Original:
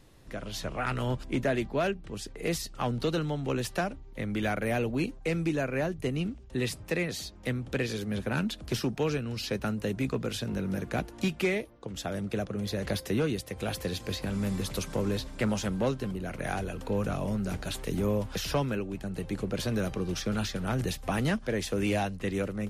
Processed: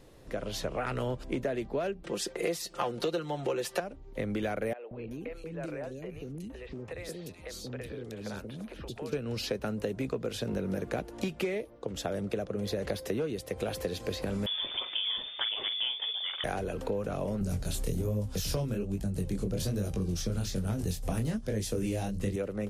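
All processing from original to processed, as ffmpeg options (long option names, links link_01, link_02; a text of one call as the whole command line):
ffmpeg -i in.wav -filter_complex "[0:a]asettb=1/sr,asplit=3[link_01][link_02][link_03];[link_01]atrim=end=2.034[link_04];[link_02]atrim=start=2.03:end=3.8,asetpts=PTS-STARTPTS,afade=type=in:duration=0.004:curve=qsin,afade=type=out:start_time=1.766:duration=0.004:curve=qsin,highpass=frequency=420:poles=1,aecho=1:1:5.7:0.66,atrim=end_sample=78057,acontrast=55[link_05];[link_03]atrim=start=3.796[link_06];[link_04][link_05]acrossfade=duration=0.004:curve1=hsin:curve2=qsin[link_07];[link_07][link_06]acrossfade=duration=0.004:curve1=qsin:curve2=hsin,asettb=1/sr,asplit=3[link_08][link_09][link_10];[link_08]atrim=end=4.734[link_11];[link_09]atrim=start=4.73:end=9.13,asetpts=PTS-STARTPTS,afade=type=in:duration=0.004:curve=qsin,afade=type=out:start_time=4.396:duration=0.004:curve=qsin,acompressor=threshold=-39dB:ratio=5:attack=3.2:release=140:knee=1:detection=peak,acrossover=split=430|3000[link_12][link_13][link_14];[link_12]adelay=180[link_15];[link_14]adelay=380[link_16];[link_15][link_13][link_16]amix=inputs=3:normalize=0,atrim=end_sample=194040[link_17];[link_10]atrim=start=9.126[link_18];[link_11][link_17]acrossfade=duration=0.004:curve1=hsin:curve2=qsin[link_19];[link_19][link_18]acrossfade=duration=0.004:curve1=qsin:curve2=hsin,asettb=1/sr,asplit=3[link_20][link_21][link_22];[link_20]atrim=end=14.464[link_23];[link_21]atrim=start=14.46:end=16.44,asetpts=PTS-STARTPTS,afade=type=in:duration=0.004:curve=qsin,afade=type=out:start_time=1.976:duration=0.004:curve=qsin,asplit=2[link_24][link_25];[link_25]adelay=45,volume=-11dB[link_26];[link_24][link_26]amix=inputs=2:normalize=0,atrim=end_sample=87318,lowpass=frequency=3100:width_type=q:width=0.5098,lowpass=frequency=3100:width_type=q:width=0.6013,lowpass=frequency=3100:width_type=q:width=0.9,lowpass=frequency=3100:width_type=q:width=2.563,afreqshift=-3600[link_27];[link_22]atrim=start=16.436[link_28];[link_23][link_27]acrossfade=duration=0.004:curve1=hsin:curve2=qsin[link_29];[link_29][link_28]acrossfade=duration=0.004:curve1=qsin:curve2=hsin,asettb=1/sr,asplit=3[link_30][link_31][link_32];[link_30]atrim=end=17.414[link_33];[link_31]atrim=start=17.41:end=22.36,asetpts=PTS-STARTPTS,afade=type=in:duration=0.004:curve=qsin,afade=type=out:start_time=4.946:duration=0.004:curve=qsin,bass=frequency=250:gain=15,treble=frequency=4000:gain=14,asoftclip=type=hard:threshold=-11.5dB,flanger=delay=19:depth=7.8:speed=1.2[link_34];[link_32]atrim=start=22.356[link_35];[link_33][link_34]acrossfade=duration=0.004:curve1=hsin:curve2=qsin[link_36];[link_36][link_35]acrossfade=duration=0.004:curve1=qsin:curve2=hsin,equalizer=frequency=490:width_type=o:width=1.1:gain=8,acompressor=threshold=-29dB:ratio=6" out.wav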